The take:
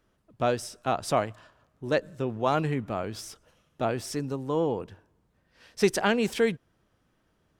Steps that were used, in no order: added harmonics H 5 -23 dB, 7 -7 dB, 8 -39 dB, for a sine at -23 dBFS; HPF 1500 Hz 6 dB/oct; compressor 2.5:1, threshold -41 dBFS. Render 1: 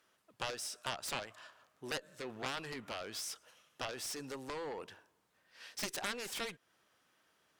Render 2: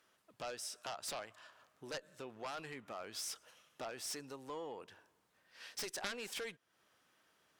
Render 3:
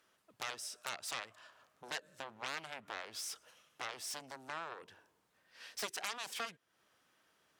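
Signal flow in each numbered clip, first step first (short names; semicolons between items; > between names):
HPF > compressor > added harmonics; compressor > HPF > added harmonics; compressor > added harmonics > HPF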